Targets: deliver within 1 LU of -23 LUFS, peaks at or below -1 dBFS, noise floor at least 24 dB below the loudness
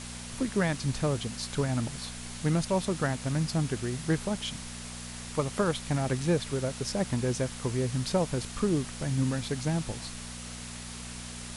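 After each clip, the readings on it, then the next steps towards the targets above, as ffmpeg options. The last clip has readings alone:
hum 60 Hz; harmonics up to 240 Hz; hum level -42 dBFS; noise floor -41 dBFS; noise floor target -55 dBFS; loudness -31.0 LUFS; peak -14.5 dBFS; loudness target -23.0 LUFS
-> -af "bandreject=f=60:t=h:w=4,bandreject=f=120:t=h:w=4,bandreject=f=180:t=h:w=4,bandreject=f=240:t=h:w=4"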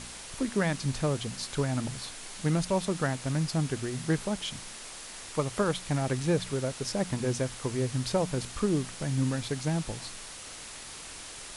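hum none; noise floor -44 dBFS; noise floor target -56 dBFS
-> -af "afftdn=nr=12:nf=-44"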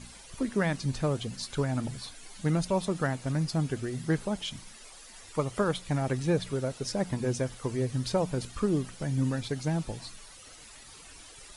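noise floor -50 dBFS; noise floor target -55 dBFS
-> -af "afftdn=nr=6:nf=-50"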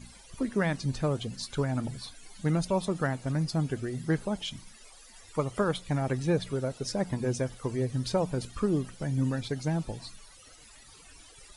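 noise floor -53 dBFS; noise floor target -55 dBFS
-> -af "afftdn=nr=6:nf=-53"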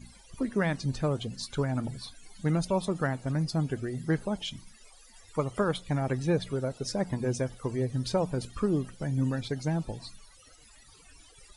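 noise floor -56 dBFS; loudness -31.0 LUFS; peak -14.5 dBFS; loudness target -23.0 LUFS
-> -af "volume=8dB"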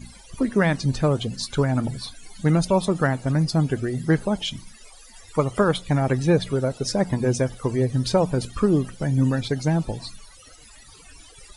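loudness -23.0 LUFS; peak -6.5 dBFS; noise floor -48 dBFS

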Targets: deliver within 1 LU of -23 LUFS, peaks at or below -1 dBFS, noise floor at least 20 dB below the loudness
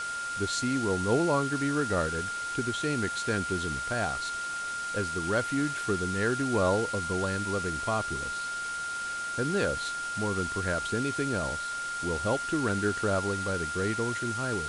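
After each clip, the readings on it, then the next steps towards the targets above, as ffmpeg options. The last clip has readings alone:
steady tone 1400 Hz; tone level -32 dBFS; noise floor -35 dBFS; noise floor target -50 dBFS; loudness -29.5 LUFS; peak -14.0 dBFS; loudness target -23.0 LUFS
-> -af "bandreject=f=1.4k:w=30"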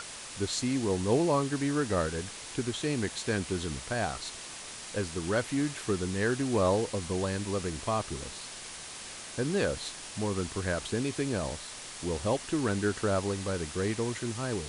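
steady tone none; noise floor -44 dBFS; noise floor target -52 dBFS
-> -af "afftdn=nr=8:nf=-44"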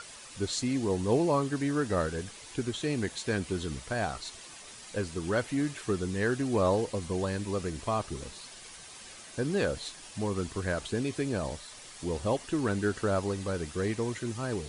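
noise floor -48 dBFS; noise floor target -52 dBFS
-> -af "afftdn=nr=6:nf=-48"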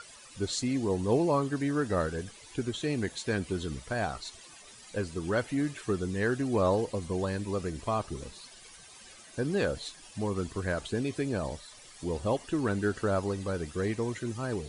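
noise floor -52 dBFS; loudness -31.5 LUFS; peak -15.0 dBFS; loudness target -23.0 LUFS
-> -af "volume=8.5dB"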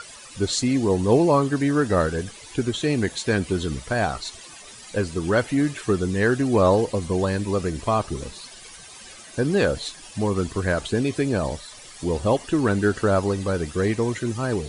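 loudness -23.0 LUFS; peak -6.5 dBFS; noise floor -43 dBFS

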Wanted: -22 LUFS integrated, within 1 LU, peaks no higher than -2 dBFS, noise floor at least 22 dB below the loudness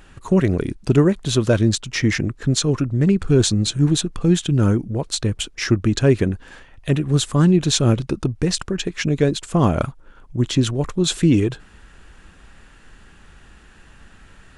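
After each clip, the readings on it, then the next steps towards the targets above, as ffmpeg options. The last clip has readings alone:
loudness -19.5 LUFS; peak -2.5 dBFS; loudness target -22.0 LUFS
-> -af "volume=-2.5dB"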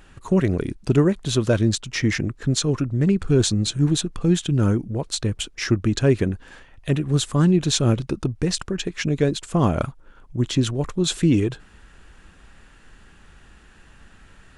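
loudness -22.0 LUFS; peak -5.0 dBFS; noise floor -51 dBFS

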